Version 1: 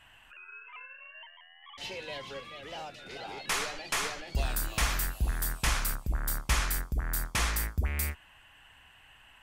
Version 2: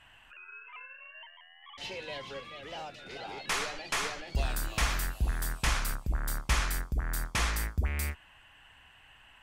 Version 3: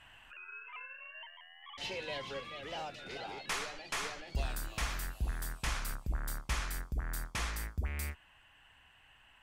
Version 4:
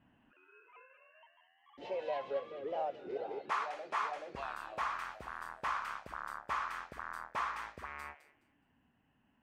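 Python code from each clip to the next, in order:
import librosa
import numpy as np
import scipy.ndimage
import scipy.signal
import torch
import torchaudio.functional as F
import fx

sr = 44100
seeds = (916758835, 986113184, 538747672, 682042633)

y1 = fx.high_shelf(x, sr, hz=11000.0, db=-9.5)
y2 = fx.rider(y1, sr, range_db=5, speed_s=0.5)
y2 = F.gain(torch.from_numpy(y2), -5.0).numpy()
y3 = fx.echo_wet_highpass(y2, sr, ms=210, feedback_pct=34, hz=1700.0, wet_db=-5.0)
y3 = fx.auto_wah(y3, sr, base_hz=210.0, top_hz=1100.0, q=3.4, full_db=-33.0, direction='up')
y3 = F.gain(torch.from_numpy(y3), 10.5).numpy()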